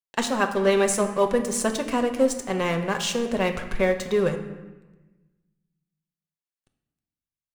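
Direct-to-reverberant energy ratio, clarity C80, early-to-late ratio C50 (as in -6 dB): 4.5 dB, 11.0 dB, 9.5 dB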